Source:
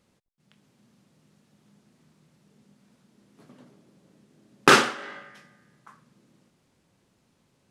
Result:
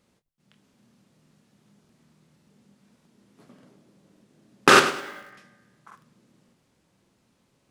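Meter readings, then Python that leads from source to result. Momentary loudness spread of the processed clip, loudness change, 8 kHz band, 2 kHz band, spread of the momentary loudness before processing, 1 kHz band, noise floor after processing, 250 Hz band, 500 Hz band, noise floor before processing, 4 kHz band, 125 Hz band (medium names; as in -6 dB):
14 LU, +1.5 dB, +1.0 dB, +1.5 dB, 16 LU, +2.0 dB, -69 dBFS, +0.5 dB, +2.0 dB, -69 dBFS, +1.0 dB, -0.5 dB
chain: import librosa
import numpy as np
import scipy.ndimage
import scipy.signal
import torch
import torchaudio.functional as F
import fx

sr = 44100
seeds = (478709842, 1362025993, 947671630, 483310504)

y = fx.hum_notches(x, sr, base_hz=50, count=3)
y = fx.doubler(y, sr, ms=26.0, db=-11.0)
y = fx.buffer_crackle(y, sr, first_s=0.64, period_s=0.58, block=2048, kind='repeat')
y = fx.echo_crushed(y, sr, ms=103, feedback_pct=35, bits=7, wet_db=-13)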